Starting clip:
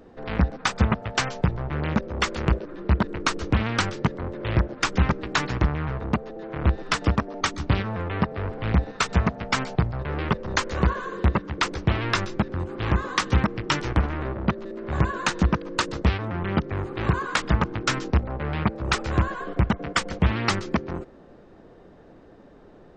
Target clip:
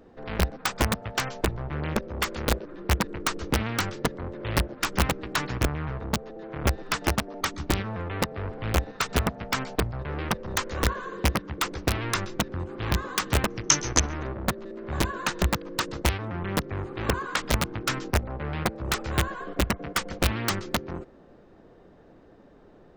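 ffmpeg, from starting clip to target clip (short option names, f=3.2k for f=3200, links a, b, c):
-filter_complex "[0:a]aeval=exprs='(mod(3.55*val(0)+1,2)-1)/3.55':c=same,asettb=1/sr,asplit=3[a][b][c];[a]atrim=end=13.504[d];[b]atrim=start=13.5:end=14.27,asetpts=PTS-STARTPTS,afade=t=in:d=0.004:c=qsin,afade=t=out:st=0.766:d=0.004:c=qsin,lowpass=f=6.2k:t=q:w=13[e];[c]atrim=start=14.266[f];[d][e]acrossfade=d=0.004:c1=hsin:c2=qsin[g];[g][f]acrossfade=d=0.004:c1=qsin:c2=hsin,volume=-3.5dB"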